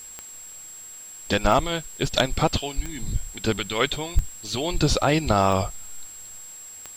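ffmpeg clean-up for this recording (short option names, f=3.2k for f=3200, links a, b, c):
-af "adeclick=t=4,bandreject=f=7.6k:w=30,afwtdn=0.0035"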